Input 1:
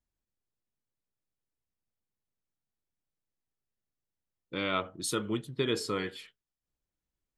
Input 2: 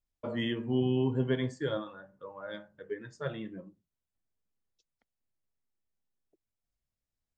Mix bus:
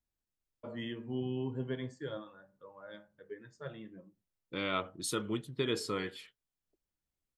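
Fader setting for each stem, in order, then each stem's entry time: −3.0, −8.0 decibels; 0.00, 0.40 seconds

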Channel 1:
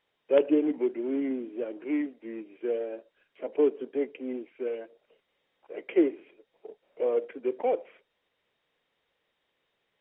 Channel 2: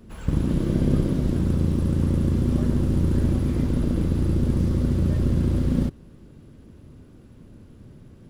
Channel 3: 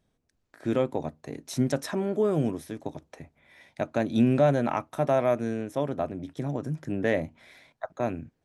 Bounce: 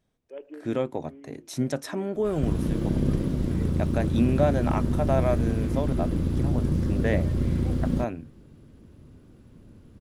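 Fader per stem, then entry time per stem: −19.0, −3.5, −1.5 decibels; 0.00, 2.15, 0.00 seconds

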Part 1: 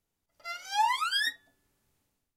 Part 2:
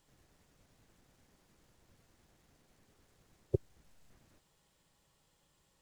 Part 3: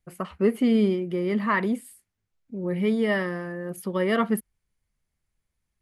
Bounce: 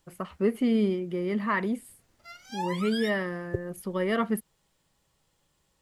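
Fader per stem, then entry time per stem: −8.0, +1.0, −3.5 decibels; 1.80, 0.00, 0.00 seconds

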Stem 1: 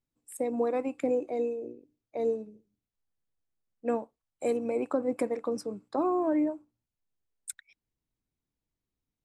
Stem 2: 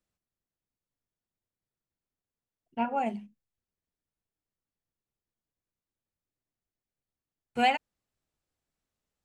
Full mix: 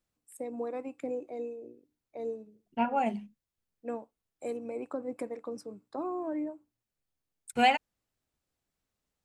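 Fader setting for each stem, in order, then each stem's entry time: −7.5, +1.0 decibels; 0.00, 0.00 seconds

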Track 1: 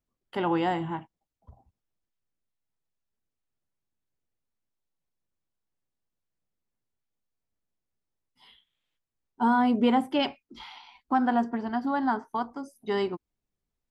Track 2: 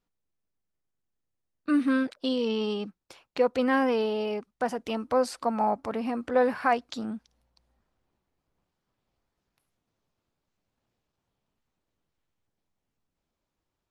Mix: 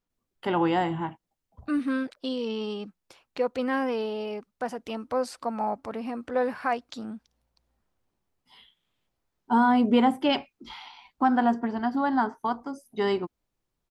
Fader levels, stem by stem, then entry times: +2.0, −3.0 decibels; 0.10, 0.00 seconds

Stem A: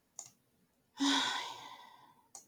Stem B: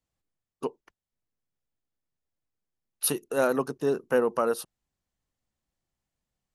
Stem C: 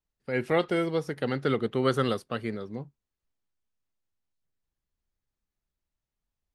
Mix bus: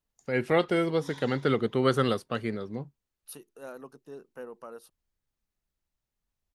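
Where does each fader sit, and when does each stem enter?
−17.0, −18.5, +1.0 decibels; 0.00, 0.25, 0.00 seconds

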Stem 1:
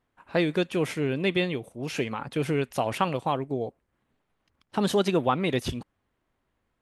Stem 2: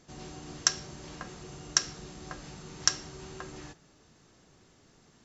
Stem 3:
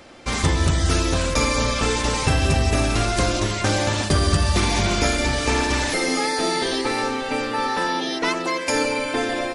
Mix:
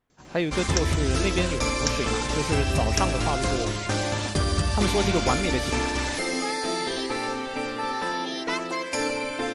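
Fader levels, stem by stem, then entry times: −1.5, −3.5, −5.5 decibels; 0.00, 0.10, 0.25 seconds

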